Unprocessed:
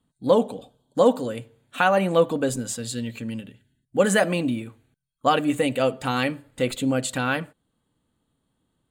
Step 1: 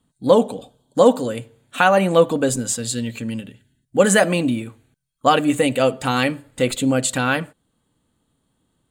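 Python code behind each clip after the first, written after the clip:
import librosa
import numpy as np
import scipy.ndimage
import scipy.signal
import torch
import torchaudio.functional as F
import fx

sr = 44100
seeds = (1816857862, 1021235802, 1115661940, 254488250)

y = fx.peak_eq(x, sr, hz=7600.0, db=4.0, octaves=1.0)
y = y * 10.0 ** (4.5 / 20.0)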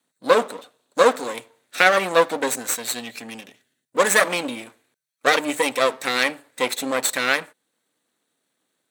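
y = fx.lower_of_two(x, sr, delay_ms=0.51)
y = scipy.signal.sosfilt(scipy.signal.butter(2, 500.0, 'highpass', fs=sr, output='sos'), y)
y = y * 10.0 ** (1.5 / 20.0)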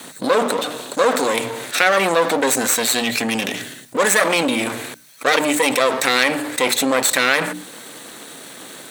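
y = fx.hum_notches(x, sr, base_hz=60, count=5)
y = fx.env_flatten(y, sr, amount_pct=70)
y = y * 10.0 ** (-2.5 / 20.0)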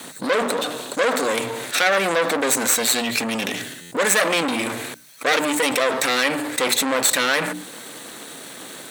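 y = fx.buffer_glitch(x, sr, at_s=(3.81,), block=512, repeats=8)
y = fx.transformer_sat(y, sr, knee_hz=2700.0)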